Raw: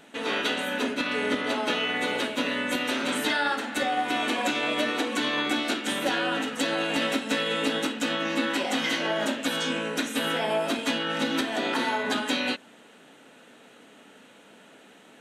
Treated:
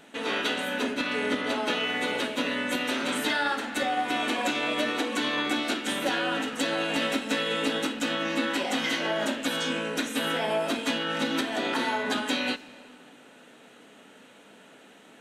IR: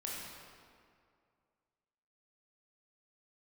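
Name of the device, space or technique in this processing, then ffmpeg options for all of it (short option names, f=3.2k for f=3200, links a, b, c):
saturated reverb return: -filter_complex "[0:a]asplit=2[a][b];[1:a]atrim=start_sample=2205[c];[b][c]afir=irnorm=-1:irlink=0,asoftclip=type=tanh:threshold=-31dB,volume=-12dB[d];[a][d]amix=inputs=2:normalize=0,volume=-1.5dB"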